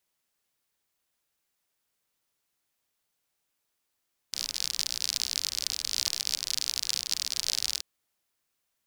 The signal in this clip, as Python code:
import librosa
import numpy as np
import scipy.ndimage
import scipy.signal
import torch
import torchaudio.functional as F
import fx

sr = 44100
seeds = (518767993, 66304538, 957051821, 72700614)

y = fx.rain(sr, seeds[0], length_s=3.48, drops_per_s=56.0, hz=4800.0, bed_db=-22.5)